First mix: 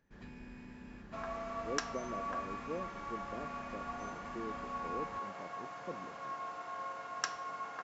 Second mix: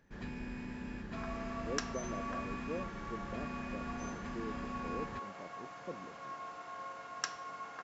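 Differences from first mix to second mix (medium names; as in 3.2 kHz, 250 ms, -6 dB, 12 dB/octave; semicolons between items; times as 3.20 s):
first sound +7.5 dB; second sound: add peaking EQ 860 Hz -3.5 dB 2 oct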